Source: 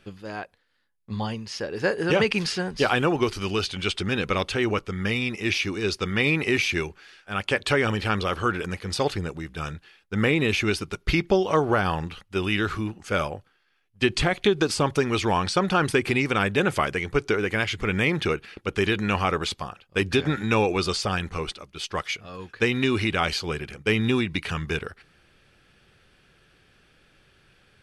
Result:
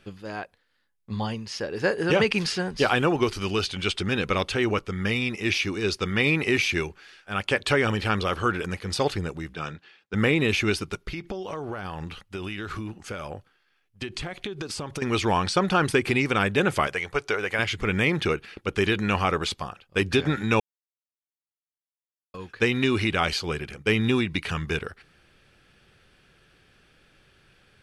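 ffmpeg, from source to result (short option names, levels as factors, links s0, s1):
-filter_complex "[0:a]asettb=1/sr,asplit=3[s0][s1][s2];[s0]atrim=end=9.544[s3];[s1]atrim=start=9.54:end=10.14,asetpts=PTS-STARTPTS,afade=t=in:d=0.004:c=qsin,afade=t=out:st=0.596:d=0.004:c=qsin,highpass=150,lowpass=5300[s4];[s2]atrim=start=10.136[s5];[s3][s4]acrossfade=d=0.004:c1=hsin:c2=qsin[s6];[s6][s5]acrossfade=d=0.004:c1=qsin:c2=hsin,asettb=1/sr,asplit=3[s7][s8][s9];[s7]atrim=end=11.024[s10];[s8]atrim=start=11.02:end=15.02,asetpts=PTS-STARTPTS,afade=t=in:d=0.004:c=qsin,afade=t=out:st=3.996:d=0.004:c=qsin,acompressor=threshold=0.0355:ratio=10:attack=3.2:release=140:knee=1:detection=peak[s11];[s9]atrim=start=15.016[s12];[s10][s11]acrossfade=d=0.004:c1=hsin:c2=qsin[s13];[s13][s12]acrossfade=d=0.004:c1=qsin:c2=hsin,asettb=1/sr,asplit=3[s14][s15][s16];[s14]atrim=end=16.874[s17];[s15]atrim=start=16.87:end=17.59,asetpts=PTS-STARTPTS,afade=t=in:d=0.004:c=qsin,afade=t=out:st=0.716:d=0.004:c=qsin,lowshelf=f=430:t=q:w=1.5:g=-8[s18];[s16]atrim=start=17.586[s19];[s17][s18]acrossfade=d=0.004:c1=hsin:c2=qsin[s20];[s20][s19]acrossfade=d=0.004:c1=qsin:c2=hsin,asplit=3[s21][s22][s23];[s21]atrim=end=20.6,asetpts=PTS-STARTPTS,afade=t=out:st=20.596:d=0.004:c=hsin[s24];[s22]atrim=start=20.6:end=22.34,asetpts=PTS-STARTPTS,volume=0[s25];[s23]atrim=start=22.34,asetpts=PTS-STARTPTS,afade=t=in:d=0.004:c=hsin[s26];[s24][s25][s26]concat=n=3:v=0:a=1"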